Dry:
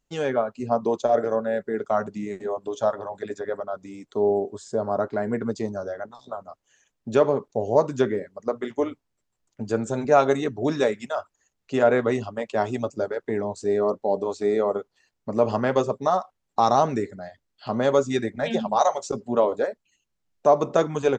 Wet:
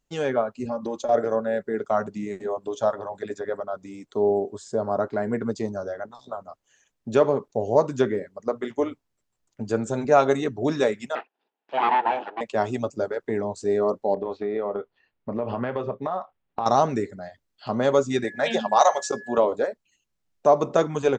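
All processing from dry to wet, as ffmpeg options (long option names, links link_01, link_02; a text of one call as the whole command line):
ffmpeg -i in.wav -filter_complex "[0:a]asettb=1/sr,asplit=3[link_01][link_02][link_03];[link_01]atrim=end=0.654[link_04];[link_02]atrim=start=0.65:end=1.09,asetpts=PTS-STARTPTS,afade=type=in:duration=0.004:curve=qsin,afade=type=out:start_time=0.436:duration=0.004:curve=qsin,aecho=1:1:3.6:0.91,atrim=end_sample=19404,acompressor=threshold=-26dB:ratio=4:attack=3.2:release=140:knee=1:detection=peak[link_05];[link_03]atrim=start=1.086[link_06];[link_04][link_05]acrossfade=duration=0.004:curve1=hsin:curve2=qsin[link_07];[link_07][link_06]acrossfade=duration=0.004:curve1=qsin:curve2=hsin,asettb=1/sr,asplit=3[link_08][link_09][link_10];[link_08]atrim=end=11.154[link_11];[link_09]atrim=start=11.15:end=12.41,asetpts=PTS-STARTPTS,afade=type=in:duration=0.004:curve=qsin,afade=type=out:start_time=1.256:duration=0.004:curve=qsin,acontrast=38,aeval=exprs='abs(val(0))':channel_layout=same,highpass=frequency=320:width=0.5412,highpass=frequency=320:width=1.3066,equalizer=frequency=330:width_type=q:width=4:gain=-5,equalizer=frequency=560:width_type=q:width=4:gain=-5,equalizer=frequency=840:width_type=q:width=4:gain=7,equalizer=frequency=1200:width_type=q:width=4:gain=-8,equalizer=frequency=2100:width_type=q:width=4:gain=-9,lowpass=frequency=2800:width=0.5412,lowpass=frequency=2800:width=1.3066[link_12];[link_10]atrim=start=12.406[link_13];[link_11][link_12]acrossfade=duration=0.004:curve1=hsin:curve2=qsin[link_14];[link_14][link_13]acrossfade=duration=0.004:curve1=qsin:curve2=hsin,asettb=1/sr,asplit=3[link_15][link_16][link_17];[link_15]atrim=end=14.144[link_18];[link_16]atrim=start=14.14:end=16.66,asetpts=PTS-STARTPTS,afade=type=in:duration=0.004:curve=qsin,afade=type=out:start_time=2.516:duration=0.004:curve=qsin,lowpass=frequency=3300:width=0.5412,lowpass=frequency=3300:width=1.3066,acompressor=threshold=-23dB:ratio=6:attack=3.2:release=140:knee=1:detection=peak,asplit=2[link_19][link_20];[link_20]adelay=25,volume=-13.5dB[link_21];[link_19][link_21]amix=inputs=2:normalize=0,atrim=end_sample=111132[link_22];[link_17]atrim=start=16.656[link_23];[link_18][link_22]acrossfade=duration=0.004:curve1=hsin:curve2=qsin[link_24];[link_24][link_23]acrossfade=duration=0.004:curve1=qsin:curve2=hsin,asettb=1/sr,asplit=3[link_25][link_26][link_27];[link_25]atrim=end=18.244[link_28];[link_26]atrim=start=18.24:end=19.38,asetpts=PTS-STARTPTS,afade=type=in:duration=0.004:curve=qsin,afade=type=out:start_time=1.136:duration=0.004:curve=qsin,highpass=frequency=570:poles=1,acontrast=30,aeval=exprs='val(0)+0.01*sin(2*PI*1700*n/s)':channel_layout=same[link_29];[link_27]atrim=start=19.376[link_30];[link_28][link_29]acrossfade=duration=0.004:curve1=hsin:curve2=qsin[link_31];[link_31][link_30]acrossfade=duration=0.004:curve1=qsin:curve2=hsin" out.wav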